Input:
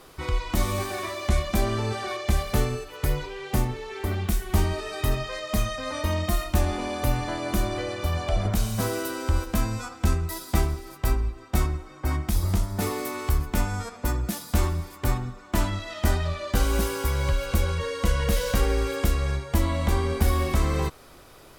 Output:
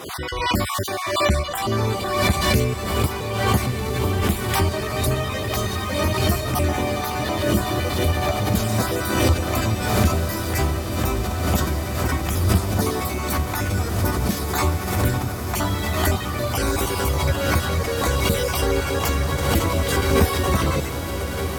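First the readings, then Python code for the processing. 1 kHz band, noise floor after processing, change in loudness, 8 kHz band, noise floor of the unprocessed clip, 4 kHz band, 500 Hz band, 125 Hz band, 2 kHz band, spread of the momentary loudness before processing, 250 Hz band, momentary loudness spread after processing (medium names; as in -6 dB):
+7.5 dB, -27 dBFS, +5.0 dB, +7.0 dB, -48 dBFS, +8.0 dB, +6.5 dB, +4.5 dB, +7.5 dB, 5 LU, +6.0 dB, 4 LU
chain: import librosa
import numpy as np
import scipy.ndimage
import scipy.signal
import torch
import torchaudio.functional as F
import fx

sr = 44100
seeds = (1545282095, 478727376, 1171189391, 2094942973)

y = fx.spec_dropout(x, sr, seeds[0], share_pct=35)
y = scipy.signal.sosfilt(scipy.signal.butter(4, 69.0, 'highpass', fs=sr, output='sos'), y)
y = fx.echo_diffused(y, sr, ms=1445, feedback_pct=74, wet_db=-6)
y = fx.pre_swell(y, sr, db_per_s=44.0)
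y = F.gain(torch.from_numpy(y), 5.5).numpy()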